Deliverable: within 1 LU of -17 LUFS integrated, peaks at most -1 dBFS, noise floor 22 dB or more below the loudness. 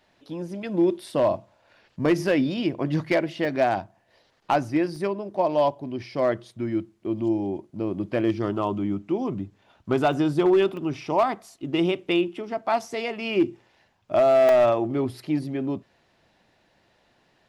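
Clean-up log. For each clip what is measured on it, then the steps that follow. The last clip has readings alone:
clipped 0.5%; flat tops at -13.5 dBFS; dropouts 5; longest dropout 2.3 ms; loudness -25.0 LUFS; peak -13.5 dBFS; loudness target -17.0 LUFS
-> clip repair -13.5 dBFS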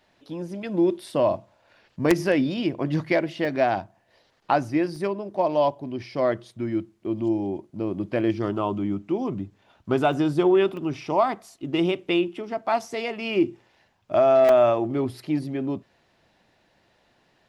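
clipped 0.0%; dropouts 5; longest dropout 2.3 ms
-> interpolate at 3.45/4.96/10.13/10.77/14.49, 2.3 ms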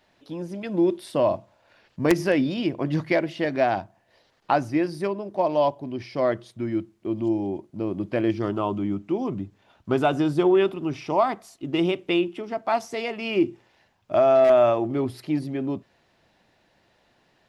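dropouts 0; loudness -24.5 LUFS; peak -4.5 dBFS; loudness target -17.0 LUFS
-> gain +7.5 dB; limiter -1 dBFS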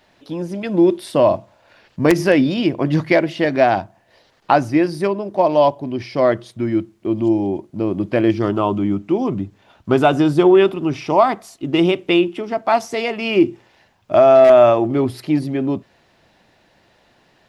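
loudness -17.0 LUFS; peak -1.0 dBFS; noise floor -58 dBFS

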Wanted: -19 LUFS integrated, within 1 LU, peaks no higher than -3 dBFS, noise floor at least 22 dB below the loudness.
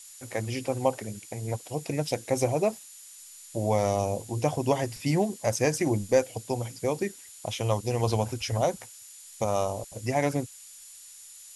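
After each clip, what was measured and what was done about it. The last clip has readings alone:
steady tone 7000 Hz; tone level -51 dBFS; noise floor -48 dBFS; noise floor target -51 dBFS; loudness -29.0 LUFS; peak -9.0 dBFS; loudness target -19.0 LUFS
-> notch 7000 Hz, Q 30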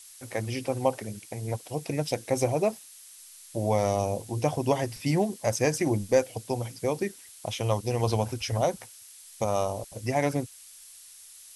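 steady tone none; noise floor -50 dBFS; noise floor target -51 dBFS
-> denoiser 6 dB, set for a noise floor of -50 dBFS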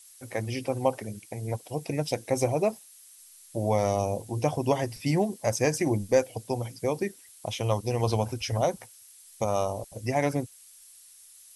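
noise floor -53 dBFS; loudness -29.0 LUFS; peak -9.0 dBFS; loudness target -19.0 LUFS
-> gain +10 dB; limiter -3 dBFS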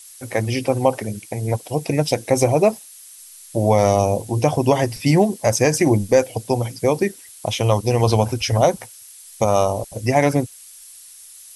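loudness -19.5 LUFS; peak -3.0 dBFS; noise floor -43 dBFS

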